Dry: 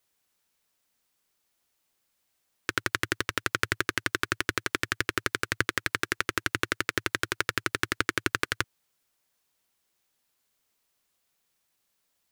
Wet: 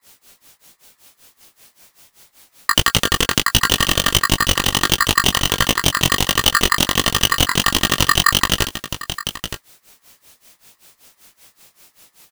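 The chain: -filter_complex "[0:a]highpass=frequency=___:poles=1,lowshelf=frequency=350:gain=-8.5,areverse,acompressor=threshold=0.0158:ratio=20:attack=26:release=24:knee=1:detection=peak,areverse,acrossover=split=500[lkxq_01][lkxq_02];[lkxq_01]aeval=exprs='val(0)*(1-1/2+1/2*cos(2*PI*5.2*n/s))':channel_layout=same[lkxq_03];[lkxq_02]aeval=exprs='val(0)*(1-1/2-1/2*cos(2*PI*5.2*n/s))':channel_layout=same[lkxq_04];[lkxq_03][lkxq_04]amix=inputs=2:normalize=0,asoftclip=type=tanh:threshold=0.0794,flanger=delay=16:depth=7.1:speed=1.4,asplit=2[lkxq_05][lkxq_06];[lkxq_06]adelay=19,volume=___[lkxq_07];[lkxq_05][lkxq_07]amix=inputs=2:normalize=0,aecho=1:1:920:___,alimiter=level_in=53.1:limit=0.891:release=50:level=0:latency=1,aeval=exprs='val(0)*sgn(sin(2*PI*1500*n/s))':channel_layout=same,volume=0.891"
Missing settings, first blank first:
160, 0.224, 0.15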